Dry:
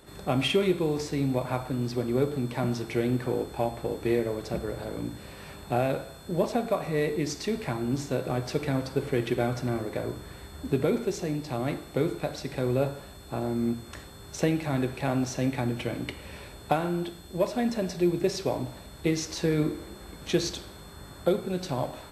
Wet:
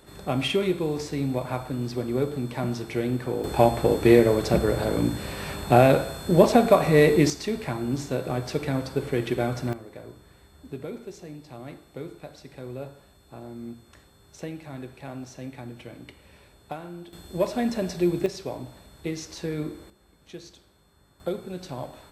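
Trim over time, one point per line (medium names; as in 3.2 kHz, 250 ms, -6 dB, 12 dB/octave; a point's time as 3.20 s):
0 dB
from 3.44 s +10 dB
from 7.30 s +1 dB
from 9.73 s -10.5 dB
from 17.13 s +1.5 dB
from 18.26 s -5 dB
from 19.90 s -16 dB
from 21.20 s -5 dB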